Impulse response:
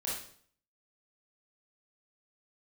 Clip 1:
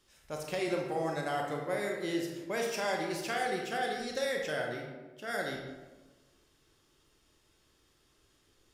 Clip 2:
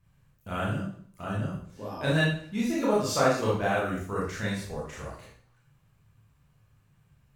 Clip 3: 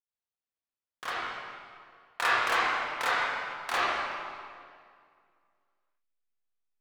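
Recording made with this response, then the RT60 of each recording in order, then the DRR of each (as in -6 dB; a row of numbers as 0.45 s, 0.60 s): 2; 1.3 s, 0.55 s, 2.1 s; 0.0 dB, -6.5 dB, -10.0 dB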